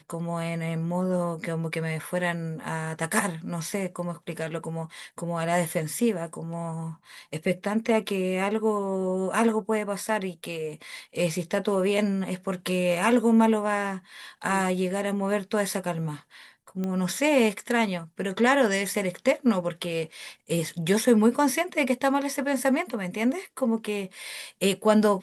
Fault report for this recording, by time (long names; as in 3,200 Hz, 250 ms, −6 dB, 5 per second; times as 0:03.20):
0:16.84: click −19 dBFS